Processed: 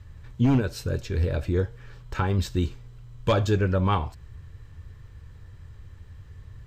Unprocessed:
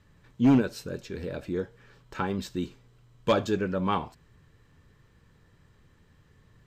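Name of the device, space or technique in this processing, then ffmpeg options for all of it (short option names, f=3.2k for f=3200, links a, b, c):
car stereo with a boomy subwoofer: -af "lowshelf=f=130:t=q:w=1.5:g=11.5,alimiter=limit=-17dB:level=0:latency=1:release=277,volume=5dB"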